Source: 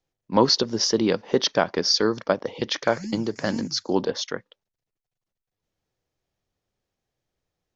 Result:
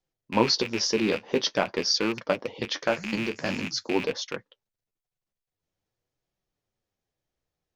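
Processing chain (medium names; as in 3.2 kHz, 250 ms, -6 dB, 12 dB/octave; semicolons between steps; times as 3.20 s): rattle on loud lows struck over -34 dBFS, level -16 dBFS; flange 0.47 Hz, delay 5.1 ms, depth 9.6 ms, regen -40%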